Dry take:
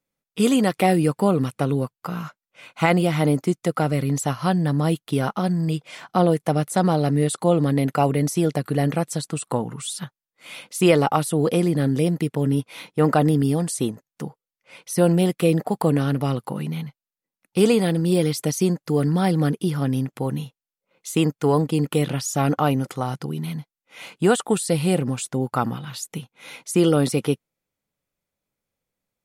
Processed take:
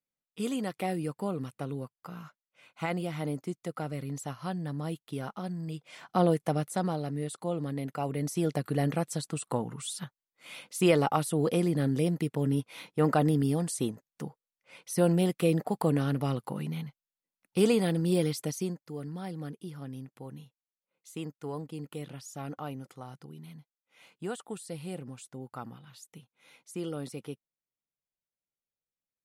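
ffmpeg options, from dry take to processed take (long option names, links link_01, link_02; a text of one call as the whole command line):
ffmpeg -i in.wav -af "volume=1dB,afade=type=in:start_time=5.73:duration=0.53:silence=0.398107,afade=type=out:start_time=6.26:duration=0.8:silence=0.398107,afade=type=in:start_time=8.01:duration=0.55:silence=0.446684,afade=type=out:start_time=18.2:duration=0.69:silence=0.266073" out.wav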